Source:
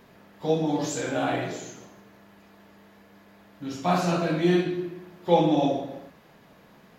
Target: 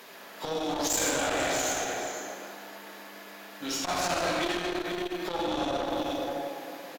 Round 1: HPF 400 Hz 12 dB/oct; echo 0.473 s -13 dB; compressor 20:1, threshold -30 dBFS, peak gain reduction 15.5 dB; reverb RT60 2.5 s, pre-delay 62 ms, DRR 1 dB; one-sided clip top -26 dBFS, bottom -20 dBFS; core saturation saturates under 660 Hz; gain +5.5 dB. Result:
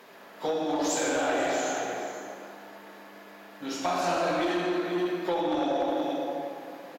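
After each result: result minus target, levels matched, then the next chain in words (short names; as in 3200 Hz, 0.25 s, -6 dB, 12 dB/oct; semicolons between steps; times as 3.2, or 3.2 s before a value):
one-sided clip: distortion -14 dB; 4000 Hz band -5.5 dB
HPF 400 Hz 12 dB/oct; echo 0.473 s -13 dB; compressor 20:1, threshold -30 dBFS, peak gain reduction 15.5 dB; reverb RT60 2.5 s, pre-delay 62 ms, DRR 1 dB; one-sided clip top -36 dBFS, bottom -20 dBFS; core saturation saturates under 660 Hz; gain +5.5 dB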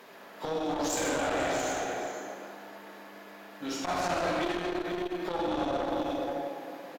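4000 Hz band -4.5 dB
HPF 400 Hz 12 dB/oct; echo 0.473 s -13 dB; compressor 20:1, threshold -30 dBFS, peak gain reduction 15.5 dB; high shelf 2400 Hz +10 dB; reverb RT60 2.5 s, pre-delay 62 ms, DRR 1 dB; one-sided clip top -36 dBFS, bottom -20 dBFS; core saturation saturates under 660 Hz; gain +5.5 dB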